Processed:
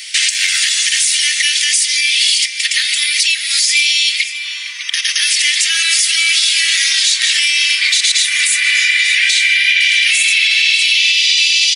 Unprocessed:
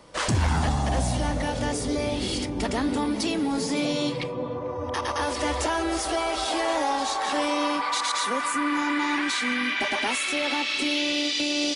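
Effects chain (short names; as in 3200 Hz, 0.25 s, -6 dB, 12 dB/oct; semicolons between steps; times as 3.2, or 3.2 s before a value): steep high-pass 2000 Hz 48 dB/oct; comb 3.8 ms, depth 32%; compressor 4:1, threshold -42 dBFS, peak gain reduction 15 dB; echo 0.593 s -14.5 dB; maximiser +32.5 dB; gain -1.5 dB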